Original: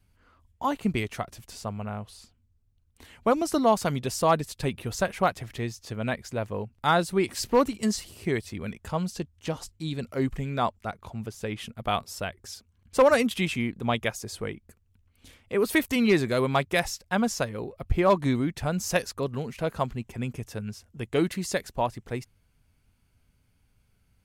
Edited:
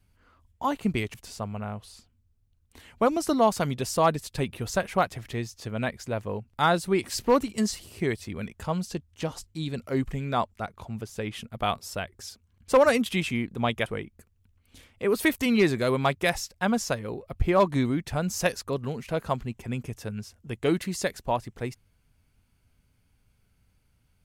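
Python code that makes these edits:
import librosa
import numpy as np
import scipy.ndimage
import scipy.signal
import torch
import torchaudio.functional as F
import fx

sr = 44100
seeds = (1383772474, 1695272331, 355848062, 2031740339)

y = fx.edit(x, sr, fx.cut(start_s=1.14, length_s=0.25),
    fx.cut(start_s=14.11, length_s=0.25), tone=tone)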